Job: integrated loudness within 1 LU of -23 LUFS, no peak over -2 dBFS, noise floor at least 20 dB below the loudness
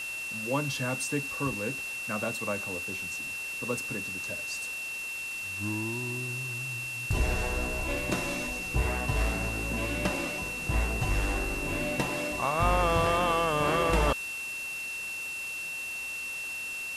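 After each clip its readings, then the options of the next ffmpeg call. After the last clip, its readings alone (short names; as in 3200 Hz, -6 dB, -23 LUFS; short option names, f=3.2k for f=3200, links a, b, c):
steady tone 2700 Hz; tone level -34 dBFS; noise floor -37 dBFS; noise floor target -50 dBFS; loudness -30.0 LUFS; peak -15.0 dBFS; loudness target -23.0 LUFS
-> -af "bandreject=f=2.7k:w=30"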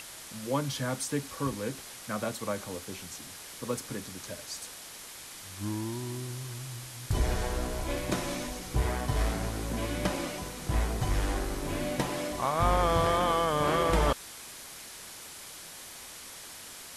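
steady tone none; noise floor -46 dBFS; noise floor target -52 dBFS
-> -af "afftdn=nr=6:nf=-46"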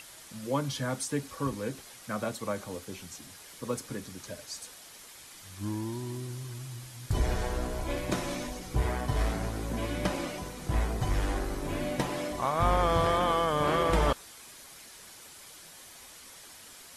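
noise floor -50 dBFS; noise floor target -52 dBFS
-> -af "afftdn=nr=6:nf=-50"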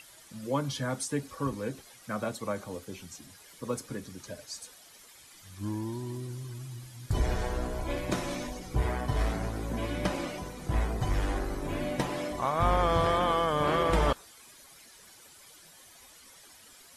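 noise floor -54 dBFS; loudness -32.0 LUFS; peak -16.0 dBFS; loudness target -23.0 LUFS
-> -af "volume=9dB"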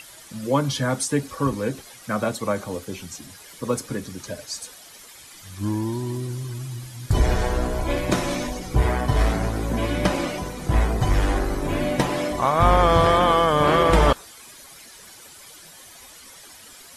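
loudness -23.0 LUFS; peak -7.0 dBFS; noise floor -46 dBFS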